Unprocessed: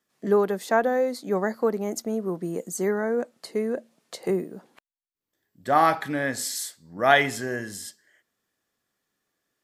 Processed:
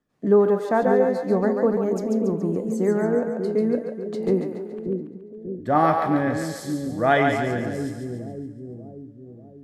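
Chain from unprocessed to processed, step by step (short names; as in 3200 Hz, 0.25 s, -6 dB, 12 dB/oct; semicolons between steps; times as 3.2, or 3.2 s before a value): tilt -3.5 dB/oct; split-band echo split 440 Hz, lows 0.589 s, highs 0.141 s, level -4.5 dB; FDN reverb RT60 0.33 s, high-frequency decay 0.95×, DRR 12 dB; gain -1.5 dB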